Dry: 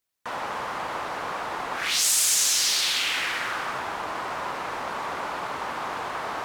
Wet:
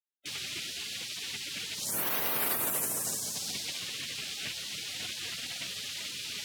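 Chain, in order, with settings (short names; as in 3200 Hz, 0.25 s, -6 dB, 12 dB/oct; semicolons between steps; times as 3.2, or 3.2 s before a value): spectral gate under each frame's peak -20 dB weak; HPF 98 Hz 24 dB/oct; gain +8.5 dB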